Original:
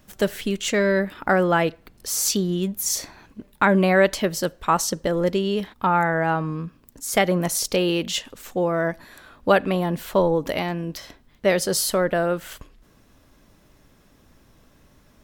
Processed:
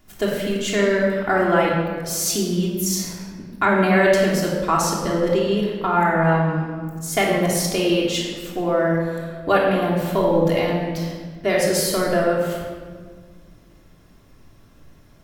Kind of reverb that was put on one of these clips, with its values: shoebox room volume 2000 m³, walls mixed, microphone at 3.2 m; gain -3.5 dB

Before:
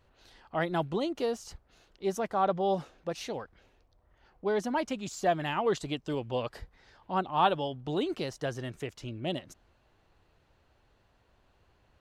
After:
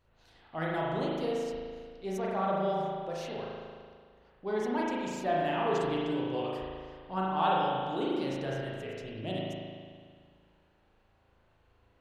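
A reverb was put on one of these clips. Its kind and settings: spring tank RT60 1.9 s, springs 37 ms, chirp 65 ms, DRR -5 dB; gain -6.5 dB

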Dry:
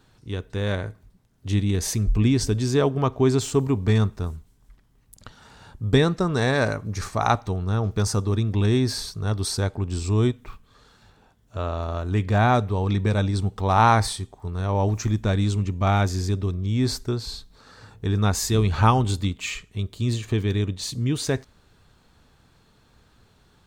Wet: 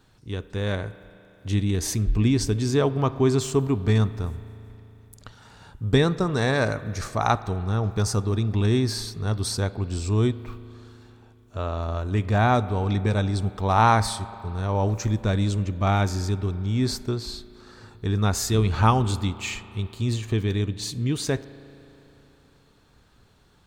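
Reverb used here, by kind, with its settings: spring tank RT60 3.3 s, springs 36 ms, chirp 30 ms, DRR 15.5 dB; gain -1 dB

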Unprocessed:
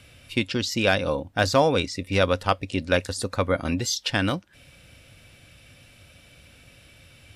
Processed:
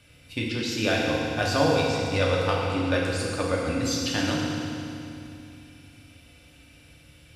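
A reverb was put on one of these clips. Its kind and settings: FDN reverb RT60 2.7 s, low-frequency decay 1.4×, high-frequency decay 0.95×, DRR -4 dB; gain -7 dB

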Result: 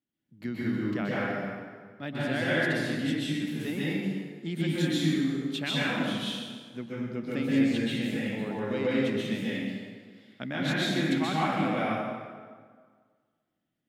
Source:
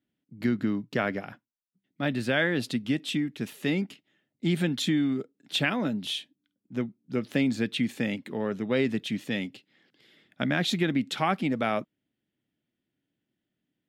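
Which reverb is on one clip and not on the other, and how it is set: plate-style reverb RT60 1.7 s, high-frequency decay 0.7×, pre-delay 0.115 s, DRR -8 dB; gain -9 dB

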